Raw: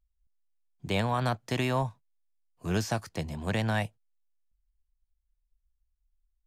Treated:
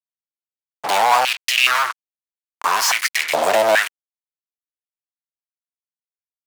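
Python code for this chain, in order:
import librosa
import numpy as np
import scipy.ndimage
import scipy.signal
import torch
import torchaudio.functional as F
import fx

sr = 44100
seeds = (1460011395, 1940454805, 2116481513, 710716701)

y = fx.fuzz(x, sr, gain_db=54.0, gate_db=-49.0)
y = fx.filter_held_highpass(y, sr, hz=2.4, low_hz=630.0, high_hz=3400.0)
y = y * 10.0 ** (-2.5 / 20.0)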